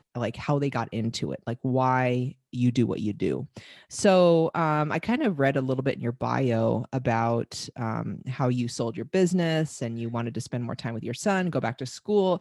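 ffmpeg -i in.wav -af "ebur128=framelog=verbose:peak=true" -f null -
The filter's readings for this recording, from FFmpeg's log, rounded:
Integrated loudness:
  I:         -26.5 LUFS
  Threshold: -36.6 LUFS
Loudness range:
  LRA:         3.7 LU
  Threshold: -46.3 LUFS
  LRA low:   -28.1 LUFS
  LRA high:  -24.4 LUFS
True peak:
  Peak:       -9.2 dBFS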